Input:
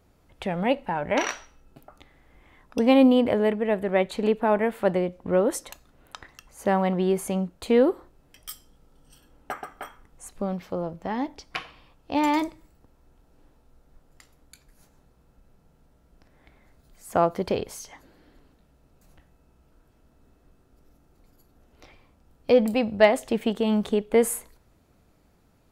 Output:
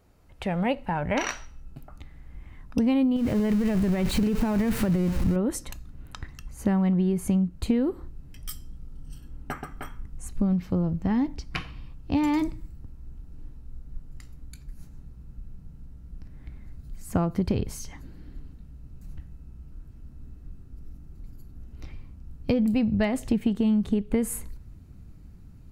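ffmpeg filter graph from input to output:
-filter_complex "[0:a]asettb=1/sr,asplit=3[s0][s1][s2];[s0]atrim=end=3.164[s3];[s1]atrim=start=3.16:end=5.36,asetpts=PTS-STARTPTS,afade=t=in:d=0.004:c=qsin,afade=t=out:st=2.196:d=0.004:c=qsin,aeval=exprs='val(0)+0.5*0.0473*sgn(val(0))':c=same,acompressor=threshold=0.1:ratio=6:attack=3.2:release=140:knee=1:detection=peak[s4];[s2]atrim=start=5.356[s5];[s3][s4]acrossfade=d=0.004:c1=hsin:c2=qsin[s6];[s6][s5]acrossfade=d=0.004:c1=qsin:c2=hsin,bandreject=f=3400:w=15,asubboost=boost=9:cutoff=190,acompressor=threshold=0.1:ratio=10"

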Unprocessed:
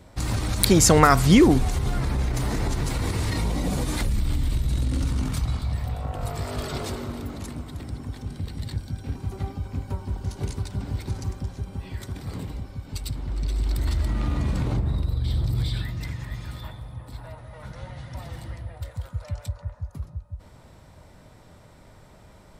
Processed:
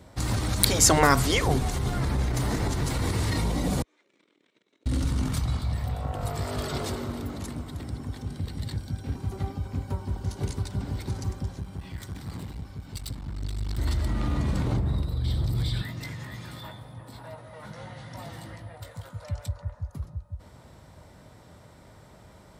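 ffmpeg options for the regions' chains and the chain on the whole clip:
-filter_complex "[0:a]asettb=1/sr,asplit=3[s0][s1][s2];[s0]atrim=end=3.824[s3];[s1]atrim=start=3.82:end=4.86,asetpts=PTS-STARTPTS,afade=t=in:d=0.004:c=qsin,afade=t=out:st=1.036:d=0.004:c=qsin,agate=range=0.0178:threshold=0.112:ratio=16:release=100:detection=peak,highpass=f=340:w=0.5412,highpass=f=340:w=1.3066,equalizer=f=410:t=q:w=4:g=3,equalizer=f=790:t=q:w=4:g=-6,equalizer=f=2300:t=q:w=4:g=7,equalizer=f=4700:t=q:w=4:g=-10,lowpass=f=6000:w=0.5412,lowpass=f=6000:w=1.3066[s4];[s2]atrim=start=4.856[s5];[s3][s4]acrossfade=d=0.004:c1=hsin:c2=qsin[s6];[s6][s5]acrossfade=d=0.004:c1=qsin:c2=hsin,asettb=1/sr,asplit=3[s7][s8][s9];[s7]atrim=end=11.594[s10];[s8]atrim=start=11.59:end=13.78,asetpts=PTS-STARTPTS,afade=t=in:d=0.004:c=qsin,afade=t=out:st=2.186:d=0.004:c=qsin,equalizer=f=450:w=1.4:g=-8,aeval=exprs='clip(val(0),-1,0.0126)':c=same[s11];[s9]atrim=start=13.776[s12];[s10][s11]acrossfade=d=0.004:c1=hsin:c2=qsin[s13];[s13][s12]acrossfade=d=0.004:c1=qsin:c2=hsin,asettb=1/sr,asplit=3[s14][s15][s16];[s14]atrim=end=15.814[s17];[s15]atrim=start=15.81:end=19.25,asetpts=PTS-STARTPTS,afade=t=in:d=0.004:c=qsin,afade=t=out:st=3.436:d=0.004:c=qsin,highpass=140,asplit=2[s18][s19];[s19]adelay=19,volume=0.447[s20];[s18][s20]amix=inputs=2:normalize=0,atrim=end_sample=151704[s21];[s16]atrim=start=19.246[s22];[s17][s21]acrossfade=d=0.004:c1=hsin:c2=qsin[s23];[s23][s22]acrossfade=d=0.004:c1=qsin:c2=hsin,highpass=53,afftfilt=real='re*lt(hypot(re,im),0.891)':imag='im*lt(hypot(re,im),0.891)':win_size=1024:overlap=0.75,equalizer=f=2500:w=6.1:g=-3"

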